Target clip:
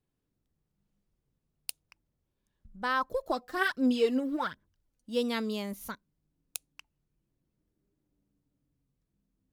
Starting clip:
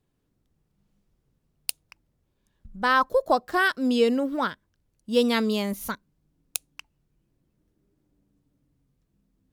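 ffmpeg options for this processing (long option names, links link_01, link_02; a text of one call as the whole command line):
ffmpeg -i in.wav -filter_complex "[0:a]asplit=3[link_01][link_02][link_03];[link_01]afade=type=out:start_time=3.08:duration=0.02[link_04];[link_02]aphaser=in_gain=1:out_gain=1:delay=4.1:decay=0.59:speed=1.3:type=sinusoidal,afade=type=in:start_time=3.08:duration=0.02,afade=type=out:start_time=5.13:duration=0.02[link_05];[link_03]afade=type=in:start_time=5.13:duration=0.02[link_06];[link_04][link_05][link_06]amix=inputs=3:normalize=0,volume=-8.5dB" out.wav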